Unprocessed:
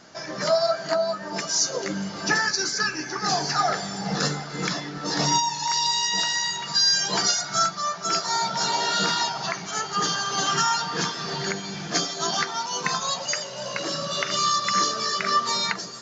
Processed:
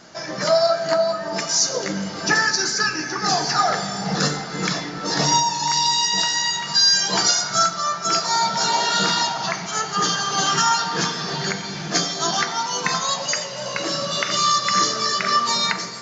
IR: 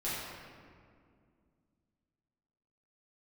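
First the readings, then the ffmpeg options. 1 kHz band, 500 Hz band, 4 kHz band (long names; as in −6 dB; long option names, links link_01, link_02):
+4.0 dB, +4.0 dB, +4.0 dB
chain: -filter_complex "[0:a]asplit=2[link_01][link_02];[1:a]atrim=start_sample=2205,highshelf=frequency=6200:gain=9.5[link_03];[link_02][link_03]afir=irnorm=-1:irlink=0,volume=-14dB[link_04];[link_01][link_04]amix=inputs=2:normalize=0,volume=2.5dB"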